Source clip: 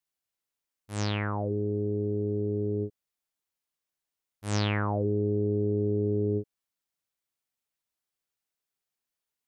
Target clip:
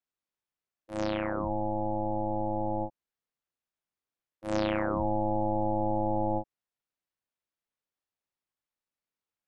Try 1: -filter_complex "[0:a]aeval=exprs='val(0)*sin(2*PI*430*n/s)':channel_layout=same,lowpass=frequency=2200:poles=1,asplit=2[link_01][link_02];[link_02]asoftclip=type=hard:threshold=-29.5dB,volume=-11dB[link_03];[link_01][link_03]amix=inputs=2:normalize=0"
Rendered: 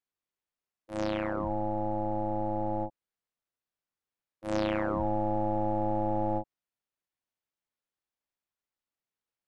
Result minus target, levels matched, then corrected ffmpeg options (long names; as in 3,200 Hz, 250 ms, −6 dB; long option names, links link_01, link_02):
hard clipping: distortion +36 dB
-filter_complex "[0:a]aeval=exprs='val(0)*sin(2*PI*430*n/s)':channel_layout=same,lowpass=frequency=2200:poles=1,asplit=2[link_01][link_02];[link_02]asoftclip=type=hard:threshold=-19.5dB,volume=-11dB[link_03];[link_01][link_03]amix=inputs=2:normalize=0"